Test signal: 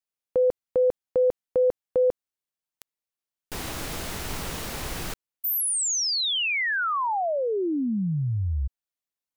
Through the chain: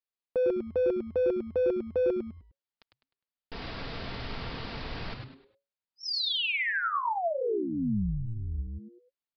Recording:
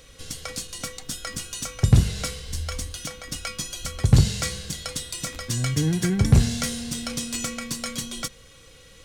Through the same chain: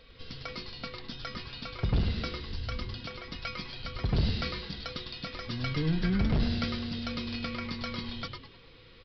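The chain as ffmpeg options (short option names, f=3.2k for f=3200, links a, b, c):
-filter_complex "[0:a]aecho=1:1:4.4:0.42,aresample=11025,asoftclip=type=hard:threshold=-16.5dB,aresample=44100,asplit=5[a][b][c][d][e];[b]adelay=102,afreqshift=-140,volume=-5dB[f];[c]adelay=204,afreqshift=-280,volume=-14.4dB[g];[d]adelay=306,afreqshift=-420,volume=-23.7dB[h];[e]adelay=408,afreqshift=-560,volume=-33.1dB[i];[a][f][g][h][i]amix=inputs=5:normalize=0,volume=-6dB"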